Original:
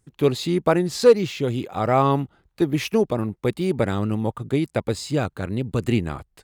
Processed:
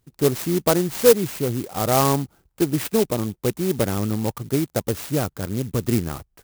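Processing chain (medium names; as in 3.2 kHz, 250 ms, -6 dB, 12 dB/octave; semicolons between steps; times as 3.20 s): sampling jitter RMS 0.097 ms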